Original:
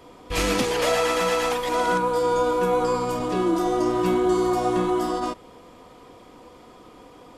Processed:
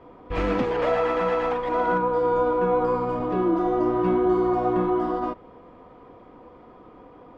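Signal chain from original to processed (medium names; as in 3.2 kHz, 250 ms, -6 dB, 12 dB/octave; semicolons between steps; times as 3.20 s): low-pass 1.6 kHz 12 dB/octave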